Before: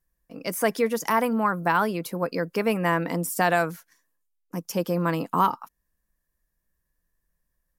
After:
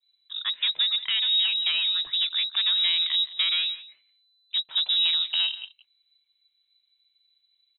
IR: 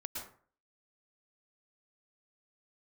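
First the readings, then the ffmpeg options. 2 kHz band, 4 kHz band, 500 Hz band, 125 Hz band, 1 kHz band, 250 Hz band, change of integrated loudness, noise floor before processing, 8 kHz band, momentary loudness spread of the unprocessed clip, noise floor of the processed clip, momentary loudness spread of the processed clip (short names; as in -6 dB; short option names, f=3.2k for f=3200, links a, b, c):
-4.5 dB, +22.0 dB, under -35 dB, under -35 dB, -24.0 dB, under -40 dB, +2.5 dB, -79 dBFS, under -40 dB, 10 LU, -73 dBFS, 9 LU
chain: -filter_complex "[0:a]adynamicequalizer=threshold=0.02:dfrequency=1400:dqfactor=0.9:tfrequency=1400:tqfactor=0.9:attack=5:release=100:ratio=0.375:range=1.5:mode=boostabove:tftype=bell,acrossover=split=300[a][b];[b]acompressor=threshold=-31dB:ratio=4[c];[a][c]amix=inputs=2:normalize=0,asoftclip=type=tanh:threshold=-23.5dB,asplit=2[d][e];[e]adynamicsmooth=sensitivity=5.5:basefreq=1.6k,volume=0.5dB[f];[d][f]amix=inputs=2:normalize=0,aecho=1:1:171:0.133,lowpass=f=3.4k:t=q:w=0.5098,lowpass=f=3.4k:t=q:w=0.6013,lowpass=f=3.4k:t=q:w=0.9,lowpass=f=3.4k:t=q:w=2.563,afreqshift=-4000"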